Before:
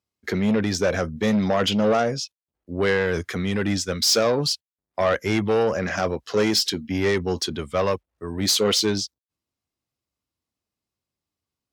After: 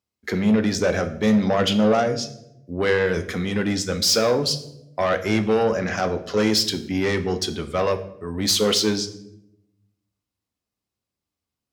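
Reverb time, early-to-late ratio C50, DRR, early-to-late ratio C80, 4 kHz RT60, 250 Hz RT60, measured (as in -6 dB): 0.85 s, 13.0 dB, 8.5 dB, 16.0 dB, 0.55 s, 1.2 s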